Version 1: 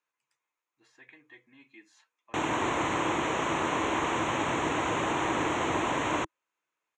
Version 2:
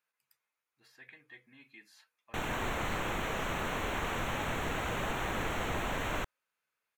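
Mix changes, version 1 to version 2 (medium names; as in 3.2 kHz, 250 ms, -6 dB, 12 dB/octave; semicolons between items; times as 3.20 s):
background -5.0 dB; master: remove cabinet simulation 120–7800 Hz, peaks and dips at 200 Hz -5 dB, 320 Hz +9 dB, 1 kHz +6 dB, 1.5 kHz -3 dB, 4.7 kHz -8 dB, 6.7 kHz +5 dB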